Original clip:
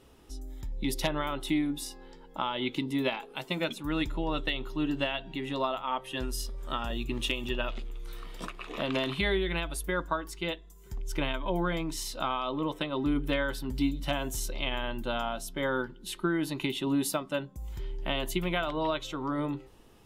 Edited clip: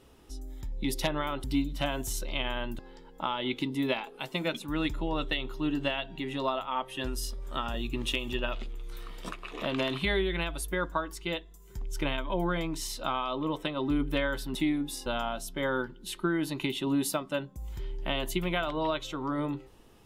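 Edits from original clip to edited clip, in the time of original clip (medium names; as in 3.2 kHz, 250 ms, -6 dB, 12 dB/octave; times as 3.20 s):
1.44–1.95 s: swap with 13.71–15.06 s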